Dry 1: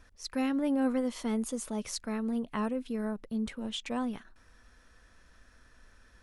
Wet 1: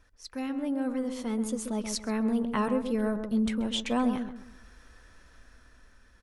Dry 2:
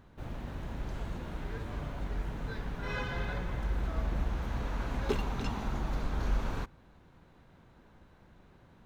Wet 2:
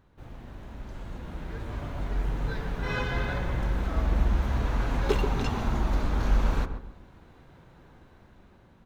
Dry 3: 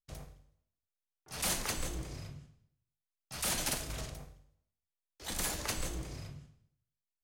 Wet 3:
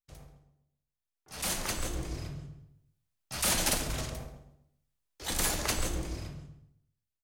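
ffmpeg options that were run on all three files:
ffmpeg -i in.wav -filter_complex "[0:a]flanger=delay=2.1:depth=1.8:regen=-80:speed=0.39:shape=triangular,asplit=2[link_01][link_02];[link_02]adelay=132,lowpass=frequency=1000:poles=1,volume=-6.5dB,asplit=2[link_03][link_04];[link_04]adelay=132,lowpass=frequency=1000:poles=1,volume=0.35,asplit=2[link_05][link_06];[link_06]adelay=132,lowpass=frequency=1000:poles=1,volume=0.35,asplit=2[link_07][link_08];[link_08]adelay=132,lowpass=frequency=1000:poles=1,volume=0.35[link_09];[link_03][link_05][link_07][link_09]amix=inputs=4:normalize=0[link_10];[link_01][link_10]amix=inputs=2:normalize=0,dynaudnorm=framelen=490:gausssize=7:maxgain=10dB" out.wav

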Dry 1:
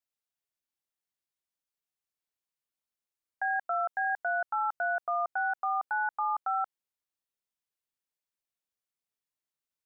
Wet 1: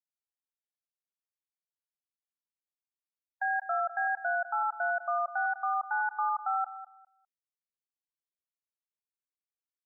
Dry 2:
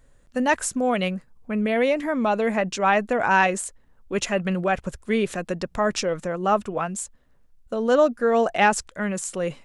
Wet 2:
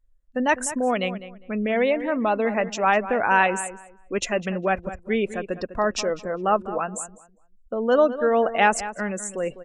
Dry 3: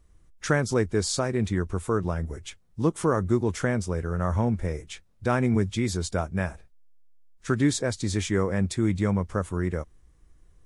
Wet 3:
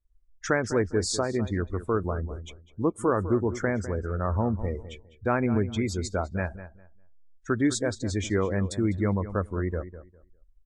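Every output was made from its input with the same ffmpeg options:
ffmpeg -i in.wav -filter_complex "[0:a]afftdn=noise_reduction=26:noise_floor=-36,equalizer=frequency=150:width=2.6:gain=-9.5,asplit=2[link_01][link_02];[link_02]adelay=202,lowpass=frequency=2500:poles=1,volume=-13dB,asplit=2[link_03][link_04];[link_04]adelay=202,lowpass=frequency=2500:poles=1,volume=0.22,asplit=2[link_05][link_06];[link_06]adelay=202,lowpass=frequency=2500:poles=1,volume=0.22[link_07];[link_01][link_03][link_05][link_07]amix=inputs=4:normalize=0" out.wav

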